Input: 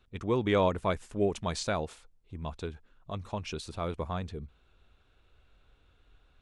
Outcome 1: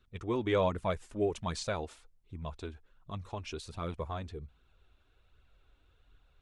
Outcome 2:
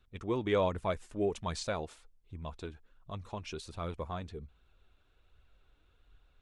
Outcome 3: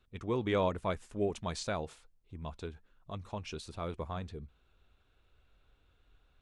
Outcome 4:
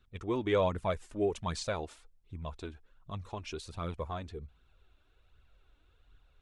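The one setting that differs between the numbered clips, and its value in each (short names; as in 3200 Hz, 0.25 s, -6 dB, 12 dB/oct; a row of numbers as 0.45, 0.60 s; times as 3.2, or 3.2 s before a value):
flange, regen: -26, +62, -88, +24%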